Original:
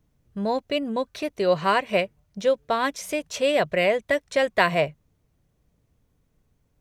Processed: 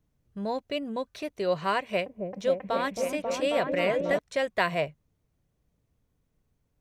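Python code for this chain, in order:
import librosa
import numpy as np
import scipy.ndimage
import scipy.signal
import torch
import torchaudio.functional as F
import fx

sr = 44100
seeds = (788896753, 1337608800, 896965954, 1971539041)

y = fx.echo_opening(x, sr, ms=270, hz=400, octaves=1, feedback_pct=70, wet_db=0, at=(1.79, 4.19))
y = y * librosa.db_to_amplitude(-6.0)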